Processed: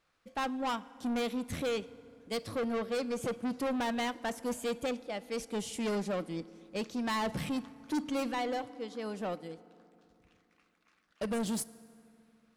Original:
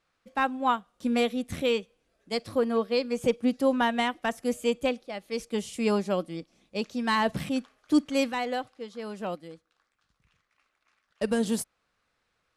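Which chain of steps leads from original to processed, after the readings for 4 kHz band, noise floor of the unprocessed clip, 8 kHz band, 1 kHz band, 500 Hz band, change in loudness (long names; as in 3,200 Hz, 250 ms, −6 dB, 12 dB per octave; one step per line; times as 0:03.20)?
−6.0 dB, −77 dBFS, −2.0 dB, −7.0 dB, −7.0 dB, −7.0 dB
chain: soft clipping −29.5 dBFS, distortion −7 dB
feedback delay network reverb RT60 2.7 s, low-frequency decay 1.35×, high-frequency decay 0.55×, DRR 17.5 dB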